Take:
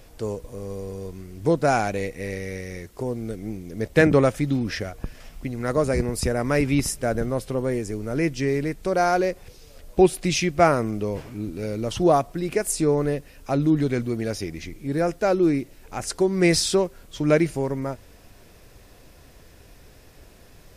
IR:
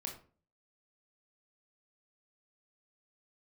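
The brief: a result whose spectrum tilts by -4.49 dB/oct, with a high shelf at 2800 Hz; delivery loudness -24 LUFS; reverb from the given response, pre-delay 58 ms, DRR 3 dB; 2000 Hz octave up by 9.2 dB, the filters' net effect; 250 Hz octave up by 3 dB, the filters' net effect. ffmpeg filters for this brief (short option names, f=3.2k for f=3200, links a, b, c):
-filter_complex "[0:a]equalizer=f=250:t=o:g=4,equalizer=f=2k:t=o:g=8.5,highshelf=f=2.8k:g=7,asplit=2[a][b];[1:a]atrim=start_sample=2205,adelay=58[c];[b][c]afir=irnorm=-1:irlink=0,volume=-1.5dB[d];[a][d]amix=inputs=2:normalize=0,volume=-5.5dB"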